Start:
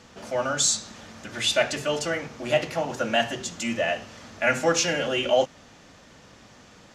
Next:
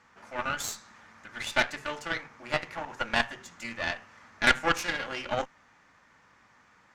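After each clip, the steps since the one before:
flat-topped bell 1,400 Hz +11.5 dB
harmonic generator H 4 −12 dB, 7 −22 dB, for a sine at 0.5 dBFS
level −9 dB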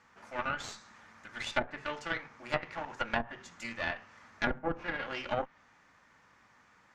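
treble cut that deepens with the level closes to 600 Hz, closed at −21.5 dBFS
level −2.5 dB

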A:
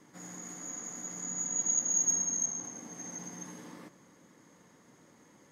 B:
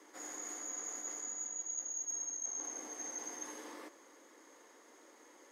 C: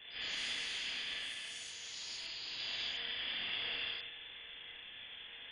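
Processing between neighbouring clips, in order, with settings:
Butterworth high-pass 310 Hz 36 dB per octave; reversed playback; downward compressor 6 to 1, threshold −41 dBFS, peak gain reduction 15.5 dB; reversed playback; level +2 dB
four-comb reverb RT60 0.9 s, combs from 30 ms, DRR −4 dB; voice inversion scrambler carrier 3,800 Hz; delay with pitch and tempo change per echo 104 ms, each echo +6 semitones, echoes 3, each echo −6 dB; level +6 dB

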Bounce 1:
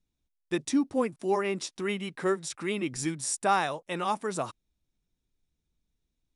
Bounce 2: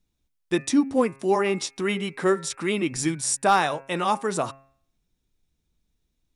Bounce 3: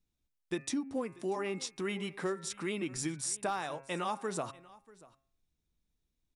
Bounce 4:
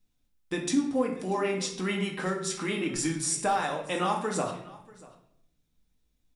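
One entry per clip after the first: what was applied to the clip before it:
hum removal 135.5 Hz, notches 20; gain into a clipping stage and back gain 15.5 dB; level +6 dB
downward compressor 6 to 1, threshold −23 dBFS, peak gain reduction 9 dB; single-tap delay 638 ms −21.5 dB; level −8 dB
convolution reverb RT60 0.65 s, pre-delay 4 ms, DRR 0.5 dB; level +4.5 dB

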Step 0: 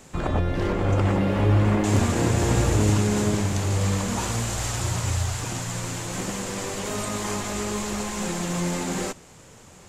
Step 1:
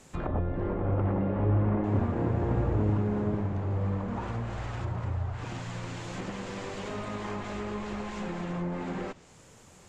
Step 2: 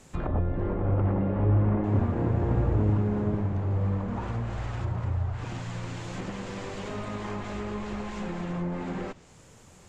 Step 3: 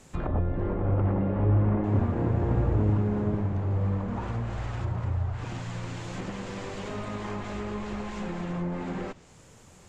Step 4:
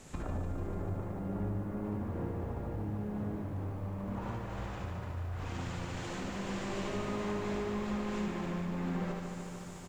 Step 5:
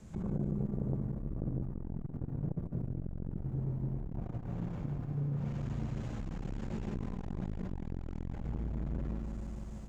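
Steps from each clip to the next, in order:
treble cut that deepens with the level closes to 1,200 Hz, closed at −21.5 dBFS; level −6 dB
low-shelf EQ 150 Hz +4.5 dB
no processing that can be heard
downward compressor 8 to 1, threshold −36 dBFS, peak gain reduction 17 dB; ambience of single reflections 58 ms −8 dB, 73 ms −6 dB; feedback echo at a low word length 148 ms, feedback 80%, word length 11 bits, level −7 dB
tilt shelving filter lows +8 dB, about 780 Hz; frequency shifter −230 Hz; saturating transformer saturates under 270 Hz; level −2.5 dB

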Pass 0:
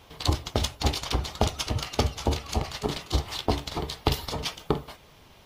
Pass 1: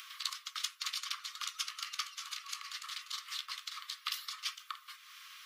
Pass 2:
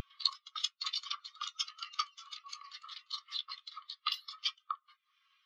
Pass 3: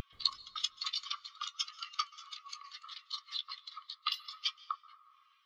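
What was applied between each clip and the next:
Chebyshev high-pass filter 1,100 Hz, order 8; upward compression, threshold −35 dBFS; level −5.5 dB
every bin expanded away from the loudest bin 2.5 to 1; level +3.5 dB
dense smooth reverb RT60 2 s, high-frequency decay 0.35×, pre-delay 120 ms, DRR 17.5 dB

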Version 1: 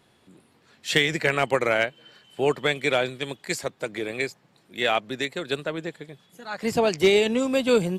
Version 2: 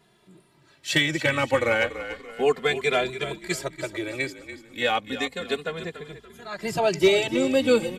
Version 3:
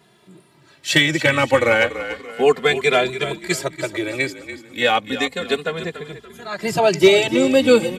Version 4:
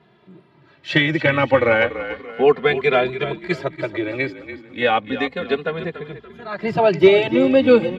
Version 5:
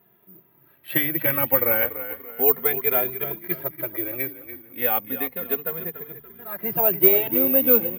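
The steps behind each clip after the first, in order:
on a send: echo with shifted repeats 288 ms, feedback 42%, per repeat −44 Hz, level −12 dB; on the sum: barber-pole flanger 2.5 ms −0.32 Hz; level +2.5 dB
high-pass filter 76 Hz; level +6.5 dB
high-frequency loss of the air 320 metres; level +1.5 dB
low-pass filter 2,900 Hz 12 dB per octave; mains-hum notches 50/100/150 Hz; bad sample-rate conversion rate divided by 3×, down none, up zero stuff; level −9 dB

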